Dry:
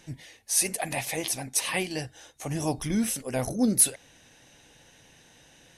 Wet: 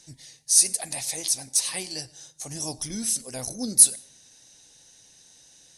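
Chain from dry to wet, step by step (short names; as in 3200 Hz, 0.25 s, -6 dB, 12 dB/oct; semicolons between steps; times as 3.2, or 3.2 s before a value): 1.29–1.74 overloaded stage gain 22 dB; band shelf 6400 Hz +15.5 dB; on a send: reverb RT60 0.55 s, pre-delay 88 ms, DRR 21 dB; on the sum: gain -8 dB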